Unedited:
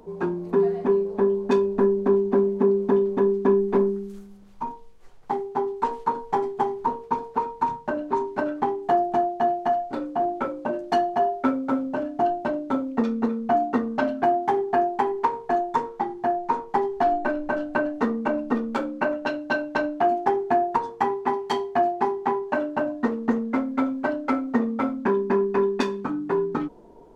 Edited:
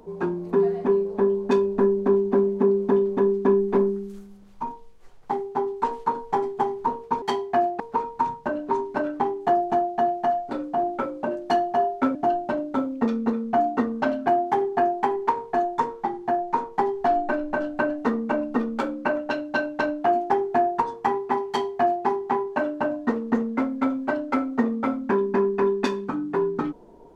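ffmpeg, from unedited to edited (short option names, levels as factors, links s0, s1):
-filter_complex "[0:a]asplit=4[s0][s1][s2][s3];[s0]atrim=end=7.222[s4];[s1]atrim=start=21.438:end=22.022[s5];[s2]atrim=start=7.218:end=11.572[s6];[s3]atrim=start=12.108[s7];[s4][s5]acrossfade=d=0.004:c1=hsin:c2=hsin[s8];[s8][s6]acrossfade=d=0.004:c1=hsin:c2=hsin[s9];[s9][s7]acrossfade=d=0.004:c1=hsin:c2=hsin"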